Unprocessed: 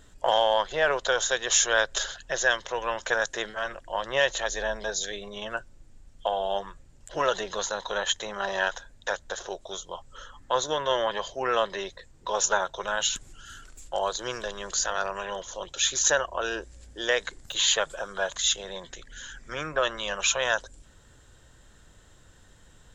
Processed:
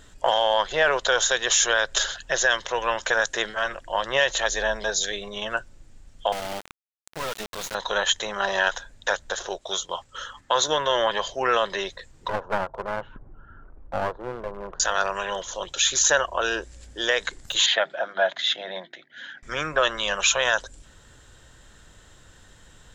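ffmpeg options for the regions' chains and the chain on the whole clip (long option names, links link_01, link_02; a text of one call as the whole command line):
ffmpeg -i in.wav -filter_complex "[0:a]asettb=1/sr,asplit=3[link_01][link_02][link_03];[link_01]atrim=end=6.324[link_04];[link_02]atrim=start=6.32:end=7.75,asetpts=PTS-STARTPTS,afade=type=in:duration=0.004:curve=qsin,afade=type=out:start_time=1.426:duration=0.004:curve=qsin,bass=frequency=250:gain=7,treble=frequency=4000:gain=0,aeval=exprs='val(0)*gte(abs(val(0)),0.0335)':channel_layout=same,aeval=exprs='(tanh(39.8*val(0)+0.5)-tanh(0.5))/39.8':channel_layout=same[link_05];[link_03]atrim=start=7.746[link_06];[link_04][link_05]acrossfade=duration=0.004:curve1=hsin:curve2=qsin[link_07];[link_07][link_06]acrossfade=duration=0.004:curve1=qsin:curve2=hsin,asettb=1/sr,asplit=3[link_08][link_09][link_10];[link_08]atrim=end=9.584[link_11];[link_09]atrim=start=9.58:end=10.68,asetpts=PTS-STARTPTS,afade=type=in:duration=0.004:curve=qsin,afade=type=out:start_time=1.096:duration=0.004:curve=qsin,agate=range=-6dB:threshold=-49dB:ratio=16:release=100:detection=peak,highpass=frequency=63:poles=1,equalizer=frequency=2800:width=0.31:gain=4.5[link_12];[link_10]atrim=start=10.676[link_13];[link_11][link_12]acrossfade=duration=0.004:curve1=hsin:curve2=qsin[link_14];[link_14][link_13]acrossfade=duration=0.004:curve1=qsin:curve2=hsin,asettb=1/sr,asplit=3[link_15][link_16][link_17];[link_15]atrim=end=12.284[link_18];[link_16]atrim=start=12.28:end=14.8,asetpts=PTS-STARTPTS,afade=type=in:duration=0.004:curve=qsin,afade=type=out:start_time=2.516:duration=0.004:curve=qsin,lowpass=frequency=1100:width=0.5412,lowpass=frequency=1100:width=1.3066,aeval=exprs='clip(val(0),-1,0.015)':channel_layout=same[link_19];[link_17]atrim=start=14.796[link_20];[link_18][link_19]acrossfade=duration=0.004:curve1=hsin:curve2=qsin[link_21];[link_21][link_20]acrossfade=duration=0.004:curve1=qsin:curve2=hsin,asettb=1/sr,asplit=3[link_22][link_23][link_24];[link_22]atrim=end=17.664[link_25];[link_23]atrim=start=17.66:end=19.43,asetpts=PTS-STARTPTS,afade=type=in:duration=0.004:curve=qsin,afade=type=out:start_time=1.766:duration=0.004:curve=qsin,agate=range=-33dB:threshold=-40dB:ratio=3:release=100:detection=peak,highpass=frequency=170:width=0.5412,highpass=frequency=170:width=1.3066,equalizer=frequency=300:width_type=q:width=4:gain=4,equalizer=frequency=440:width_type=q:width=4:gain=-9,equalizer=frequency=670:width_type=q:width=4:gain=8,equalizer=frequency=1100:width_type=q:width=4:gain=-8,equalizer=frequency=2000:width_type=q:width=4:gain=5,equalizer=frequency=2800:width_type=q:width=4:gain=-5,lowpass=frequency=3700:width=0.5412,lowpass=frequency=3700:width=1.3066,bandreject=frequency=50:width_type=h:width=6,bandreject=frequency=100:width_type=h:width=6,bandreject=frequency=150:width_type=h:width=6,bandreject=frequency=200:width_type=h:width=6,bandreject=frequency=250:width_type=h:width=6,bandreject=frequency=300:width_type=h:width=6,bandreject=frequency=350:width_type=h:width=6,bandreject=frequency=400:width_type=h:width=6[link_26];[link_24]atrim=start=19.426[link_27];[link_25][link_26]acrossfade=duration=0.004:curve1=hsin:curve2=qsin[link_28];[link_28][link_27]acrossfade=duration=0.004:curve1=qsin:curve2=hsin,equalizer=frequency=2700:width=0.37:gain=3.5,alimiter=level_in=11dB:limit=-1dB:release=50:level=0:latency=1,volume=-8dB" out.wav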